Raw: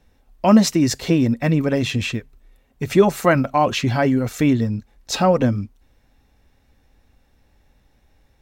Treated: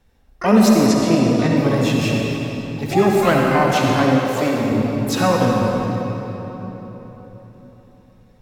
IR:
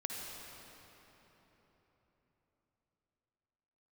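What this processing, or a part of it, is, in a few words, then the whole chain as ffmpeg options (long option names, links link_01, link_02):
shimmer-style reverb: -filter_complex "[0:a]asplit=2[link_01][link_02];[link_02]asetrate=88200,aresample=44100,atempo=0.5,volume=-8dB[link_03];[link_01][link_03]amix=inputs=2:normalize=0[link_04];[1:a]atrim=start_sample=2205[link_05];[link_04][link_05]afir=irnorm=-1:irlink=0,asettb=1/sr,asplit=3[link_06][link_07][link_08];[link_06]atrim=end=0.864[link_09];[link_07]atrim=start=0.86:end=1.57,asetpts=PTS-STARTPTS,afade=type=in:duration=0.004:curve=qsin,afade=type=out:start_time=0.706:duration=0.004:curve=qsin,lowpass=9100[link_10];[link_08]atrim=start=1.566[link_11];[link_09][link_10]acrossfade=duration=0.004:curve1=hsin:curve2=qsin[link_12];[link_12][link_11]acrossfade=duration=0.004:curve1=qsin:curve2=hsin,asettb=1/sr,asplit=3[link_13][link_14][link_15];[link_13]atrim=end=4.194[link_16];[link_14]atrim=start=4.19:end=4.72,asetpts=PTS-STARTPTS,afade=type=in:duration=0.004:curve=qsin,afade=type=out:start_time=0.526:duration=0.004:curve=qsin,lowshelf=frequency=190:gain=-10.5[link_17];[link_15]atrim=start=4.716[link_18];[link_16][link_17]acrossfade=duration=0.004:curve1=hsin:curve2=qsin[link_19];[link_19][link_18]acrossfade=duration=0.004:curve1=qsin:curve2=hsin"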